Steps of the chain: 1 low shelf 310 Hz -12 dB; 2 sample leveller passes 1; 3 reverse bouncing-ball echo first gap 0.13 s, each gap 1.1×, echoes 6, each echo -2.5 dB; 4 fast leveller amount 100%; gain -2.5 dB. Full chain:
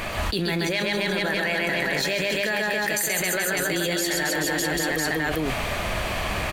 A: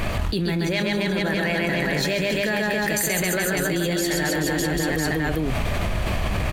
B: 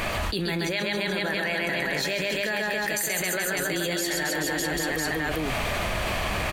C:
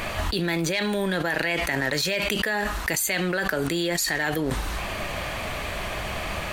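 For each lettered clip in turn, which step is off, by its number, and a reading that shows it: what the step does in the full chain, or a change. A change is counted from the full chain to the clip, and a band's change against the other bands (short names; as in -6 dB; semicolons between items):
1, 125 Hz band +7.0 dB; 2, momentary loudness spread change -2 LU; 3, crest factor change +4.5 dB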